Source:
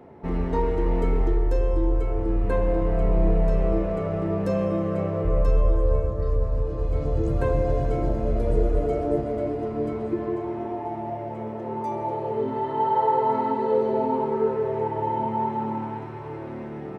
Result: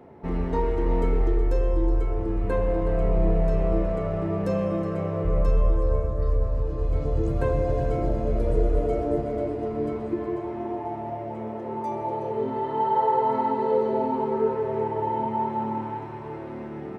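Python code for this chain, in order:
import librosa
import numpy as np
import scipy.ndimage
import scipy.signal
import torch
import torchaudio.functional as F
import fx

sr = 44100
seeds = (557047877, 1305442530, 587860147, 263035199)

y = x + 10.0 ** (-12.5 / 20.0) * np.pad(x, (int(369 * sr / 1000.0), 0))[:len(x)]
y = F.gain(torch.from_numpy(y), -1.0).numpy()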